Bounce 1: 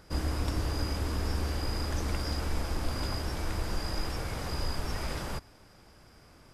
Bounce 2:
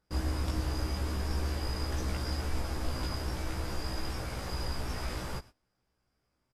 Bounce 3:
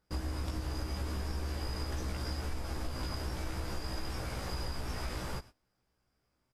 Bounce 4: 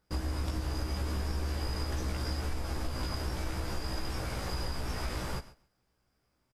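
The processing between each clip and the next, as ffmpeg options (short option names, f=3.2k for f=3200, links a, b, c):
-filter_complex "[0:a]agate=range=-21dB:threshold=-46dB:ratio=16:detection=peak,asplit=2[a][b];[b]adelay=16,volume=-2dB[c];[a][c]amix=inputs=2:normalize=0,volume=-4dB"
-af "acompressor=threshold=-32dB:ratio=6"
-af "aecho=1:1:136|272:0.1|0.017,volume=2.5dB"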